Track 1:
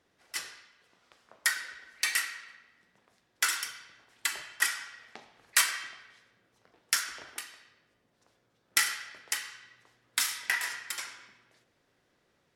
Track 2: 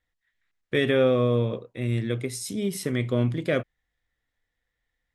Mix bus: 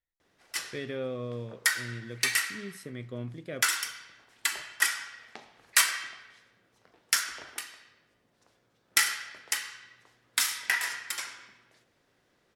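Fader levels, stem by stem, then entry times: +2.0 dB, -14.0 dB; 0.20 s, 0.00 s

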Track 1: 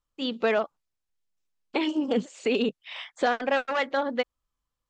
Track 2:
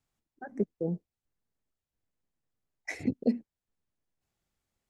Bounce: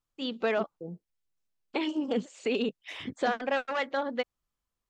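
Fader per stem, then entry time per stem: -4.0 dB, -9.0 dB; 0.00 s, 0.00 s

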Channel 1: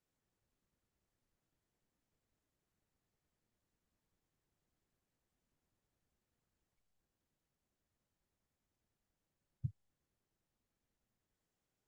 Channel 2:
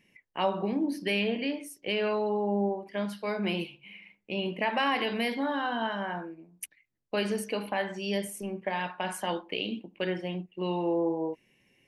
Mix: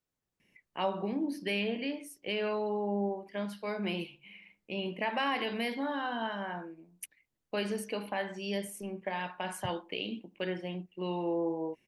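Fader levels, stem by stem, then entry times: -1.5 dB, -4.0 dB; 0.00 s, 0.40 s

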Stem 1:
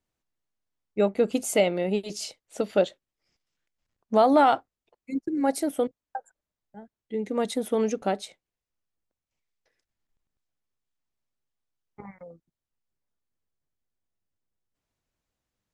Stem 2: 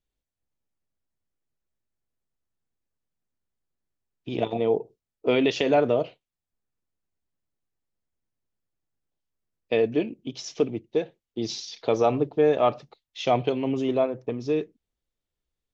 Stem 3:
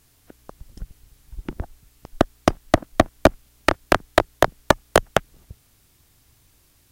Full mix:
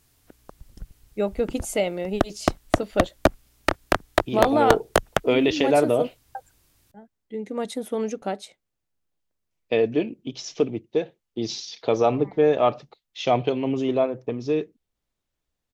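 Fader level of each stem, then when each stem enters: -2.0 dB, +1.5 dB, -4.0 dB; 0.20 s, 0.00 s, 0.00 s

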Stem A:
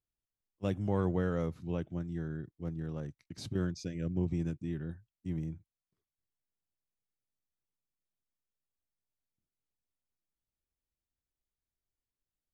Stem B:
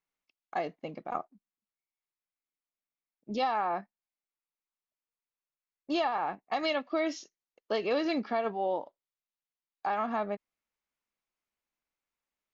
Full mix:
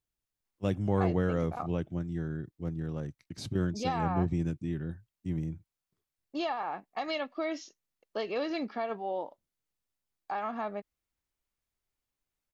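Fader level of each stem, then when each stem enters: +3.0 dB, -3.5 dB; 0.00 s, 0.45 s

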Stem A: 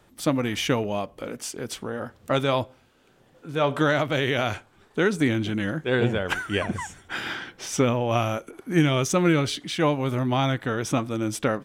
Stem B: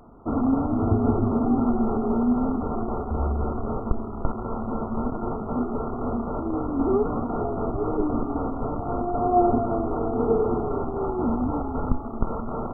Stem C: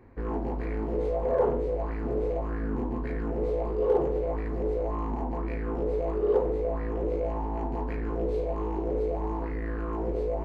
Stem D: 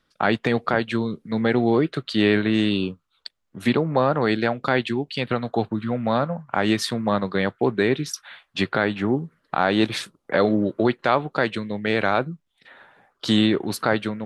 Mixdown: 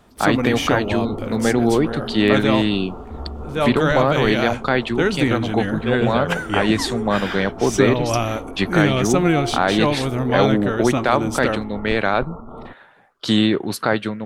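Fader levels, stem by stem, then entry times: +2.5 dB, -6.5 dB, -12.5 dB, +2.0 dB; 0.00 s, 0.00 s, 0.00 s, 0.00 s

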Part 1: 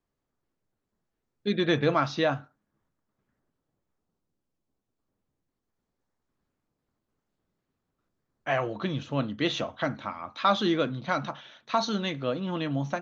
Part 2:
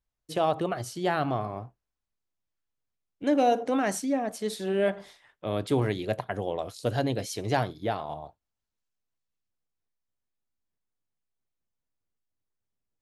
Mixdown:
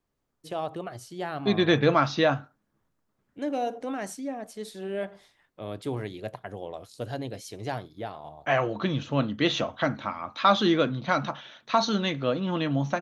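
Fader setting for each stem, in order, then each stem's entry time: +3.0 dB, -6.5 dB; 0.00 s, 0.15 s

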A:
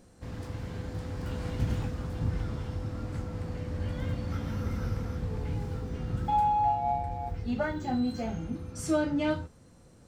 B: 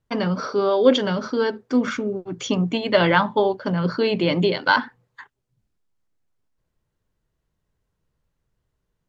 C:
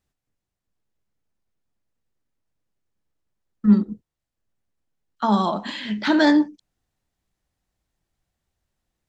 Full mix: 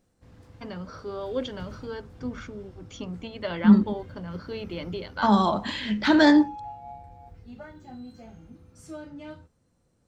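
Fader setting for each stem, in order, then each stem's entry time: -13.0 dB, -14.5 dB, -0.5 dB; 0.00 s, 0.50 s, 0.00 s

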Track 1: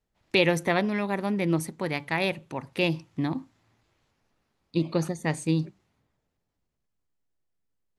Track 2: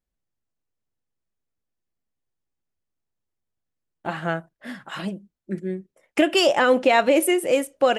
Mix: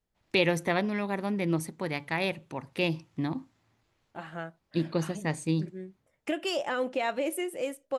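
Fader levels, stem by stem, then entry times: -3.0 dB, -12.5 dB; 0.00 s, 0.10 s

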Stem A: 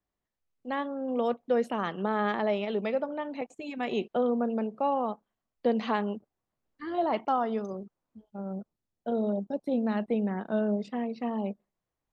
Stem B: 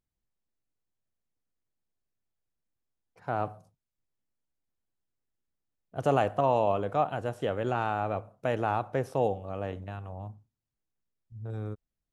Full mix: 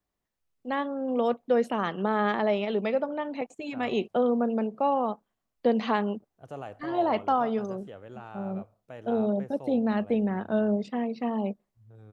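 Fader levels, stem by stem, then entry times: +2.5 dB, -14.5 dB; 0.00 s, 0.45 s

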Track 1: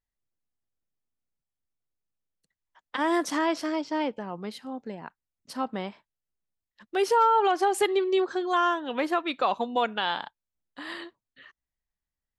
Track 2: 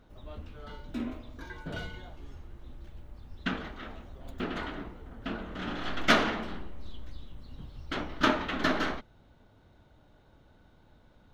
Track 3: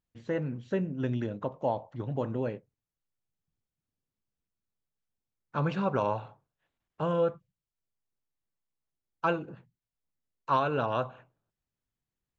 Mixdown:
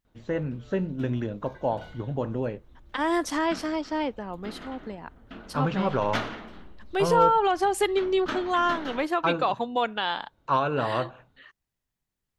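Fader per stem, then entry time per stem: 0.0 dB, -7.5 dB, +2.5 dB; 0.00 s, 0.05 s, 0.00 s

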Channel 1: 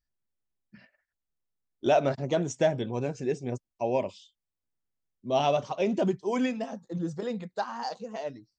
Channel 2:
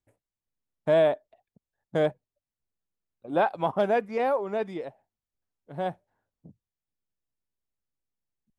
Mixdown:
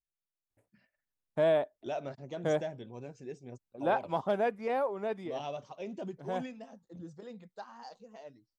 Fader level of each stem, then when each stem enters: -14.0 dB, -5.5 dB; 0.00 s, 0.50 s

